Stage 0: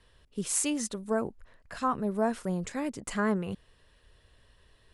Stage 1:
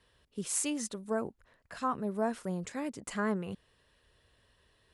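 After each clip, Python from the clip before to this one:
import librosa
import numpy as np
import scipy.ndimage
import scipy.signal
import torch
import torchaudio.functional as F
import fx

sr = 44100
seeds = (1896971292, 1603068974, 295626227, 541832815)

y = fx.highpass(x, sr, hz=86.0, slope=6)
y = y * librosa.db_to_amplitude(-3.5)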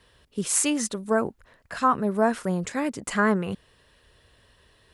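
y = fx.dynamic_eq(x, sr, hz=1500.0, q=1.1, threshold_db=-49.0, ratio=4.0, max_db=4)
y = y * librosa.db_to_amplitude(9.0)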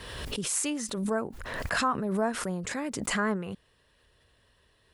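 y = fx.pre_swell(x, sr, db_per_s=35.0)
y = y * librosa.db_to_amplitude(-7.0)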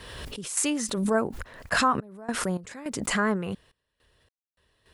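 y = fx.tremolo_random(x, sr, seeds[0], hz=3.5, depth_pct=100)
y = y * librosa.db_to_amplitude(6.0)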